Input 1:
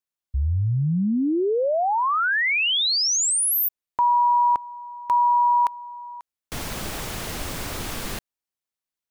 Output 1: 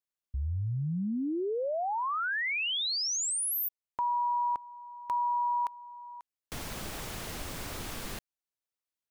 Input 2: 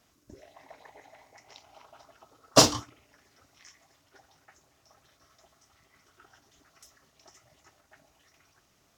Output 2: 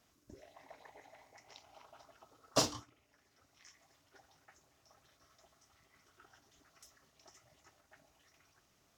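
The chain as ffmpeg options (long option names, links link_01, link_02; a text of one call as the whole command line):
ffmpeg -i in.wav -af "acompressor=threshold=-33dB:ratio=1.5:attack=8:release=883:knee=1:detection=rms,volume=-5dB" out.wav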